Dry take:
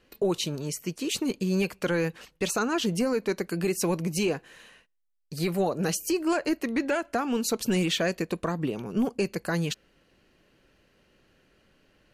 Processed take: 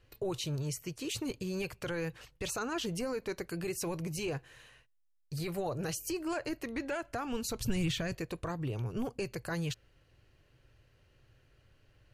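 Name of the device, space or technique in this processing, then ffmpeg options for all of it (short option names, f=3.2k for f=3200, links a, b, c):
car stereo with a boomy subwoofer: -filter_complex "[0:a]lowshelf=f=150:t=q:w=3:g=8.5,alimiter=limit=-22dB:level=0:latency=1:release=21,asettb=1/sr,asplit=3[a][b][c];[a]atrim=end=6.984[d];[b]atrim=start=6.98:end=8.15,asetpts=PTS-STARTPTS,afade=t=in:d=0.004:c=qsin,afade=t=out:st=1.166:d=0.004:c=qsin,asubboost=boost=11:cutoff=200[e];[c]atrim=start=8.146[f];[d][e]acrossfade=d=0.004:c1=hsin:c2=qsin[g];[g][f]acrossfade=d=0.004:c1=qsin:c2=hsin,volume=-5.5dB"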